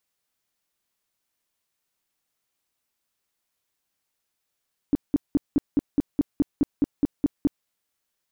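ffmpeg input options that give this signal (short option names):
-f lavfi -i "aevalsrc='0.178*sin(2*PI*287*mod(t,0.21))*lt(mod(t,0.21),6/287)':d=2.73:s=44100"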